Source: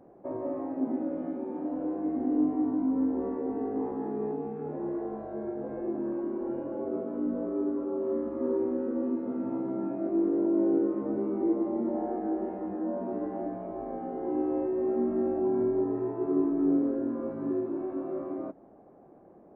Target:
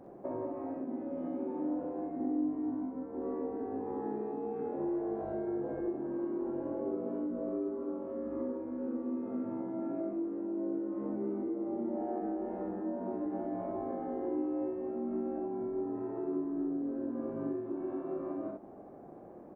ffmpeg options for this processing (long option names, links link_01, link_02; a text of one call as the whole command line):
ffmpeg -i in.wav -filter_complex "[0:a]acompressor=threshold=-38dB:ratio=6,asplit=2[link_01][link_02];[link_02]aecho=0:1:43|63:0.376|0.596[link_03];[link_01][link_03]amix=inputs=2:normalize=0,volume=2.5dB" out.wav